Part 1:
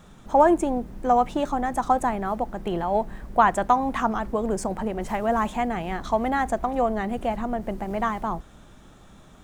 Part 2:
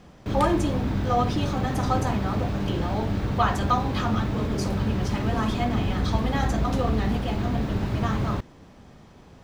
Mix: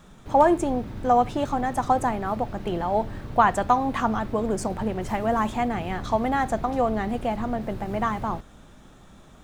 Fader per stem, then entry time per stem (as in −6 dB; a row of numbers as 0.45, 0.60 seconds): −0.5, −11.0 decibels; 0.00, 0.00 seconds